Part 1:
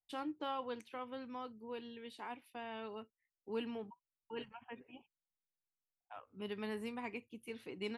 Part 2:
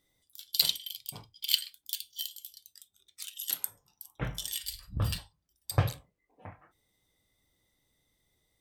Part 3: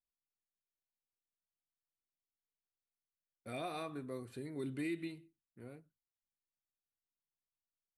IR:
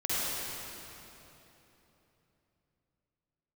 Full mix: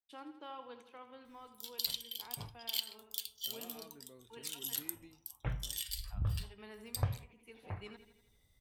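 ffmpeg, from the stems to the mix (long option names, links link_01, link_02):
-filter_complex "[0:a]highpass=frequency=230:poles=1,volume=-7dB,asplit=2[link_01][link_02];[link_02]volume=-11dB[link_03];[1:a]adelay=1250,volume=0dB[link_04];[2:a]volume=-14.5dB[link_05];[link_01][link_04]amix=inputs=2:normalize=0,asubboost=boost=3.5:cutoff=130,acompressor=threshold=-37dB:ratio=2.5,volume=0dB[link_06];[link_03]aecho=0:1:82|164|246|328|410|492|574|656:1|0.55|0.303|0.166|0.0915|0.0503|0.0277|0.0152[link_07];[link_05][link_06][link_07]amix=inputs=3:normalize=0"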